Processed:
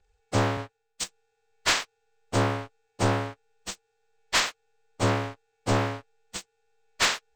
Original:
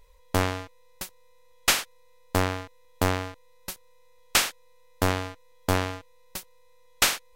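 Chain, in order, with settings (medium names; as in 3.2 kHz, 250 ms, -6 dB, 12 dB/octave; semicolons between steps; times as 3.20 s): frequency axis rescaled in octaves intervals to 85%; waveshaping leveller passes 2; 0.57–1.04 s: three bands expanded up and down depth 70%; trim -5 dB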